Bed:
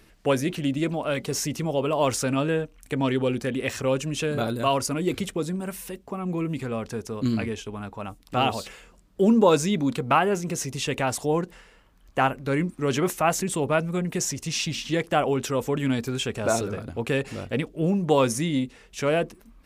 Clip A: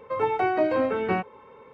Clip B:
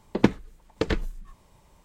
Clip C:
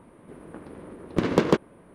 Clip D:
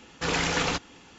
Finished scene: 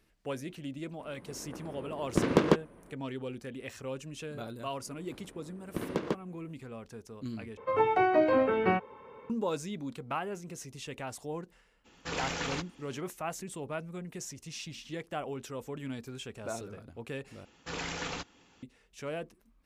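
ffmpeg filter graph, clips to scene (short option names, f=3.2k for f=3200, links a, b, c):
-filter_complex "[3:a]asplit=2[a][b];[4:a]asplit=2[c][d];[0:a]volume=-14.5dB,asplit=3[e][f][g];[e]atrim=end=7.574[h];[1:a]atrim=end=1.73,asetpts=PTS-STARTPTS,volume=-1.5dB[i];[f]atrim=start=9.296:end=17.454[j];[d]atrim=end=1.18,asetpts=PTS-STARTPTS,volume=-11dB[k];[g]atrim=start=18.626[l];[a]atrim=end=1.94,asetpts=PTS-STARTPTS,volume=-3.5dB,afade=t=in:d=0.004:c=hsin,afade=t=out:st=1.936:d=0.004:c=hsin,adelay=990[m];[b]atrim=end=1.94,asetpts=PTS-STARTPTS,volume=-12dB,afade=t=in:d=0.004:c=hsin,afade=t=out:st=1.936:d=0.004:c=hsin,adelay=4580[n];[c]atrim=end=1.18,asetpts=PTS-STARTPTS,volume=-9dB,afade=t=in:d=0.02,afade=t=out:st=1.16:d=0.02,adelay=11840[o];[h][i]acrossfade=d=0.004:c1=hsin:c2=hsin[p];[p][j]acrossfade=d=0.004:c1=hsin:c2=hsin[q];[q][k]acrossfade=d=0.004:c1=hsin:c2=hsin[r];[r][l]acrossfade=d=0.004:c1=hsin:c2=hsin[s];[s][m][n][o]amix=inputs=4:normalize=0"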